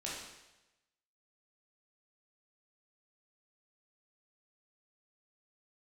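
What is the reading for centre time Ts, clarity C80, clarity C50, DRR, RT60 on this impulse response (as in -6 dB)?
68 ms, 4.0 dB, 0.5 dB, -6.0 dB, 1.0 s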